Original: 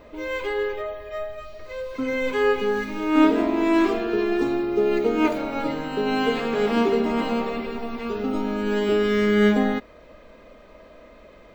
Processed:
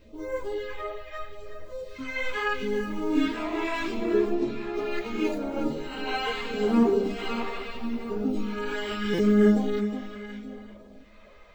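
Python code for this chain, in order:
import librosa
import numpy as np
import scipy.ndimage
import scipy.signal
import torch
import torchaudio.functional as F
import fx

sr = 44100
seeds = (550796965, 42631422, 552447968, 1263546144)

y = fx.lowpass(x, sr, hz=5100.0, slope=12, at=(4.33, 4.74))
y = y + 10.0 ** (-18.0 / 20.0) * np.pad(y, (int(869 * sr / 1000.0), 0))[:len(y)]
y = fx.phaser_stages(y, sr, stages=2, low_hz=200.0, high_hz=2900.0, hz=0.77, feedback_pct=30)
y = fx.echo_feedback(y, sr, ms=363, feedback_pct=25, wet_db=-10.0)
y = fx.buffer_glitch(y, sr, at_s=(9.13,), block=256, repeats=8)
y = fx.ensemble(y, sr)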